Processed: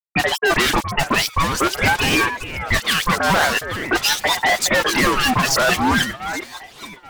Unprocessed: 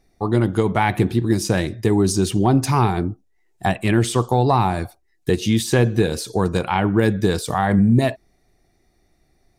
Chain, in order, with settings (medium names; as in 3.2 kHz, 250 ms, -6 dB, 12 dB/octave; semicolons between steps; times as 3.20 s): Bessel low-pass 6.7 kHz; band-stop 2.4 kHz, Q 5.4; de-hum 354.9 Hz, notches 7; spectral noise reduction 24 dB; in parallel at +2 dB: peak limiter -17.5 dBFS, peak gain reduction 10.5 dB; on the sum: wah-wah 2.6 Hz 410–3300 Hz, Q 2.1; fuzz box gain 40 dB, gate -41 dBFS; phase dispersion highs, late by 56 ms, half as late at 1.9 kHz; on a send: echo whose repeats swap between lows and highs 560 ms, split 1.2 kHz, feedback 52%, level -9.5 dB; on the sum: speed mistake 33 rpm record played at 45 rpm; ring modulator with a swept carrier 880 Hz, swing 55%, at 0.45 Hz; trim +1.5 dB